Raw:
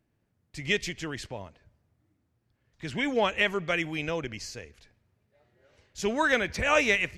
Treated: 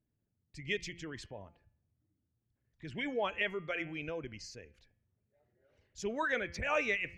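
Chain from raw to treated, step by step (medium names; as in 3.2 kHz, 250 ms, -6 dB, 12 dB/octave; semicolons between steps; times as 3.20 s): resonances exaggerated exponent 1.5; de-hum 172.1 Hz, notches 19; trim -8.5 dB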